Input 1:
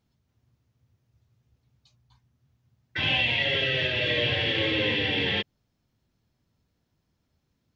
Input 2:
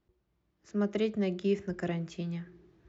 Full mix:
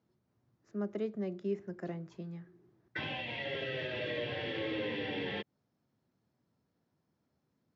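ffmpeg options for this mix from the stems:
-filter_complex "[0:a]acompressor=threshold=-29dB:ratio=6,volume=-0.5dB[a];[1:a]volume=-5.5dB[b];[a][b]amix=inputs=2:normalize=0,highpass=160,lowpass=4.5k,equalizer=f=3k:t=o:w=1.4:g=-9.5"

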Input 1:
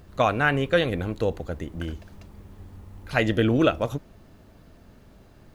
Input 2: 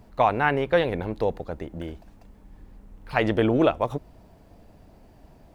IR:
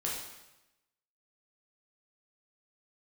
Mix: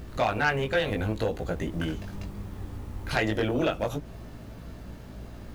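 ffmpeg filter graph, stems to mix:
-filter_complex "[0:a]acompressor=threshold=-31dB:ratio=2.5,flanger=delay=17.5:depth=2.7:speed=0.7,aeval=exprs='0.0944*sin(PI/2*1.58*val(0)/0.0944)':c=same,volume=2dB[a];[1:a]lowpass=f=1k:p=1,acrusher=bits=8:mix=0:aa=0.000001,volume=-1,volume=-5dB[b];[a][b]amix=inputs=2:normalize=0,aeval=exprs='val(0)+0.00631*(sin(2*PI*60*n/s)+sin(2*PI*2*60*n/s)/2+sin(2*PI*3*60*n/s)/3+sin(2*PI*4*60*n/s)/4+sin(2*PI*5*60*n/s)/5)':c=same"

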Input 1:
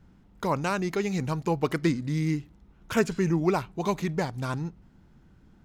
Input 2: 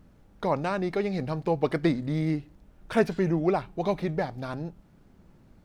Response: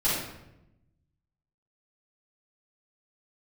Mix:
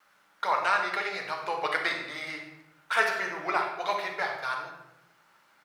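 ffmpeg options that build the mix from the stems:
-filter_complex "[0:a]bandpass=f=1.5k:t=q:w=0.62:csg=0,volume=-20dB,asplit=2[a][b];[b]volume=-8dB[c];[1:a]highpass=f=1.3k:t=q:w=1.6,adelay=3.3,volume=2.5dB,asplit=2[d][e];[e]volume=-10.5dB[f];[2:a]atrim=start_sample=2205[g];[c][f]amix=inputs=2:normalize=0[h];[h][g]afir=irnorm=-1:irlink=0[i];[a][d][i]amix=inputs=3:normalize=0"

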